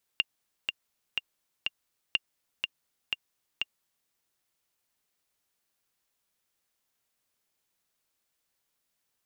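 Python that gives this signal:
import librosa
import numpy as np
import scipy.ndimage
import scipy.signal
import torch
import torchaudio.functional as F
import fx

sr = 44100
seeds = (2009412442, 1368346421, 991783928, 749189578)

y = fx.click_track(sr, bpm=123, beats=4, bars=2, hz=2800.0, accent_db=4.5, level_db=-11.0)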